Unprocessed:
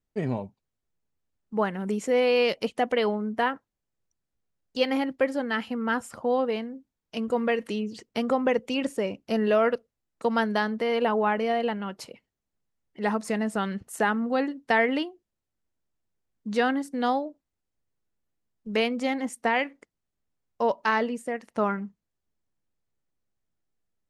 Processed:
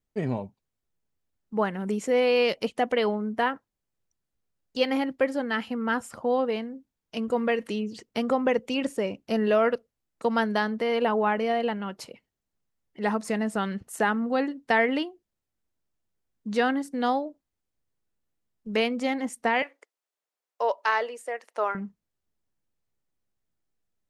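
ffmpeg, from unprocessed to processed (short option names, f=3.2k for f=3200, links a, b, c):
-filter_complex "[0:a]asettb=1/sr,asplit=3[a][b][c];[a]atrim=end=19.624[d];[b]atrim=start=19.62:end=21.75,asetpts=PTS-STARTPTS,afade=t=in:d=0.004:c=qsin,afade=t=out:st=2.126:d=0.004:c=qsin,highpass=f=440:w=0.5412,highpass=f=440:w=1.3066[e];[c]atrim=start=21.746[f];[d][e]acrossfade=d=0.004:c1=hsin:c2=qsin[g];[g][f]acrossfade=d=0.004:c1=qsin:c2=hsin"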